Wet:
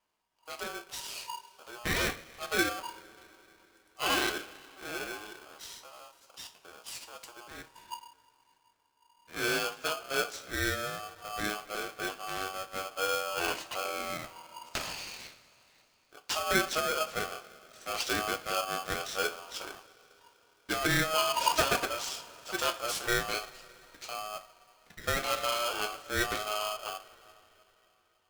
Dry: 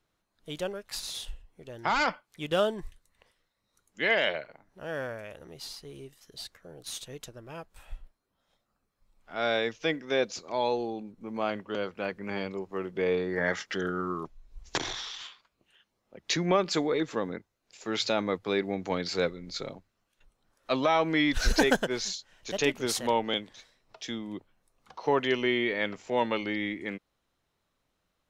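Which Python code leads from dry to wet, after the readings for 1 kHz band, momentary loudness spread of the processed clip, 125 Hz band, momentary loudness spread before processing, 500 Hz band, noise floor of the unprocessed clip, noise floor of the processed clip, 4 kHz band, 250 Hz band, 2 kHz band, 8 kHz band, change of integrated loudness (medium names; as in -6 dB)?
-0.5 dB, 19 LU, -4.0 dB, 18 LU, -6.5 dB, -79 dBFS, -69 dBFS, 0.0 dB, -8.5 dB, -0.5 dB, +3.0 dB, -2.5 dB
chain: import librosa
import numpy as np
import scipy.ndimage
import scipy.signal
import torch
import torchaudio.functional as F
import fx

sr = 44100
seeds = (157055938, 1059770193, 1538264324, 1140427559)

y = fx.vibrato(x, sr, rate_hz=0.95, depth_cents=15.0)
y = fx.rev_double_slope(y, sr, seeds[0], early_s=0.3, late_s=3.8, knee_db=-22, drr_db=4.5)
y = y * np.sign(np.sin(2.0 * np.pi * 950.0 * np.arange(len(y)) / sr))
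y = F.gain(torch.from_numpy(y), -5.0).numpy()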